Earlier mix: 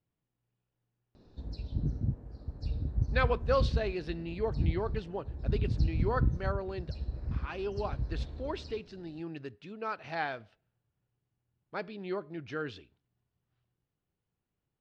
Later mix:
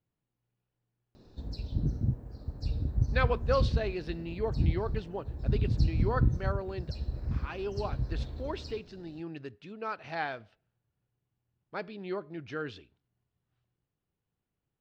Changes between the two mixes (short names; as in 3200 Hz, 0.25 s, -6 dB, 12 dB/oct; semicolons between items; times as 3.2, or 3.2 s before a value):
background: remove air absorption 69 m; reverb: on, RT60 0.35 s